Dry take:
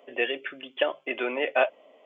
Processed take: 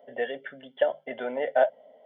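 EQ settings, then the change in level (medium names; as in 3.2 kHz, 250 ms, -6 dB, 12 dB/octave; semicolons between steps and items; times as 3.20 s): tilt shelf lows +8 dB, about 790 Hz; static phaser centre 1.7 kHz, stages 8; +1.5 dB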